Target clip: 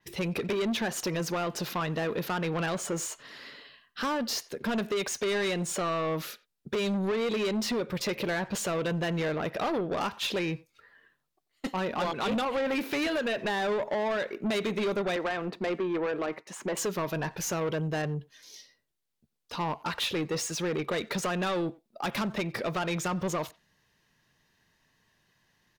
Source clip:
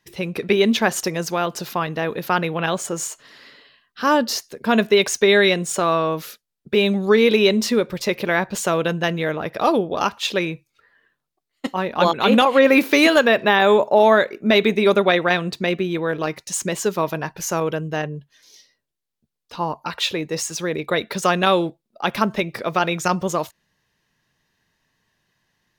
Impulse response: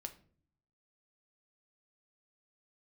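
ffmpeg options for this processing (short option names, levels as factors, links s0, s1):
-filter_complex "[0:a]asettb=1/sr,asplit=3[s0][s1][s2];[s0]atrim=end=15.164[s3];[s1]atrim=start=15.16:end=16.77,asetpts=PTS-STARTPTS,afade=t=in:d=0.004:c=qsin,afade=t=out:st=1.606:d=0.004:c=qsin,acrossover=split=210 2300:gain=0.0891 1 0.1[s4][s5][s6];[s4][s5][s6]amix=inputs=3:normalize=0[s7];[s2]atrim=start=16.766[s8];[s3][s7]acrossfade=d=0.004:c1=hsin:c2=qsin[s9];[s9][s8]acrossfade=d=0.004:c1=qsin:c2=hsin,acompressor=threshold=0.1:ratio=5,asoftclip=type=tanh:threshold=0.0531,asplit=2[s10][s11];[s11]adelay=90,highpass=300,lowpass=3400,asoftclip=type=hard:threshold=0.0211,volume=0.112[s12];[s10][s12]amix=inputs=2:normalize=0,adynamicequalizer=threshold=0.00447:dfrequency=4700:dqfactor=0.7:tfrequency=4700:tqfactor=0.7:attack=5:release=100:ratio=0.375:range=2.5:mode=cutabove:tftype=highshelf"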